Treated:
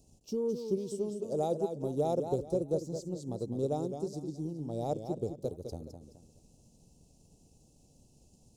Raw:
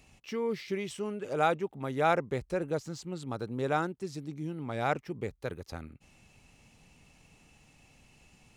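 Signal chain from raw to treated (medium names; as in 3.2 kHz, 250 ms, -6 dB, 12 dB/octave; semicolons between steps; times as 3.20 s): Chebyshev band-stop 530–5800 Hz, order 2; transient shaper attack +4 dB, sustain -1 dB; modulated delay 211 ms, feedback 34%, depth 113 cents, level -8 dB; trim -1 dB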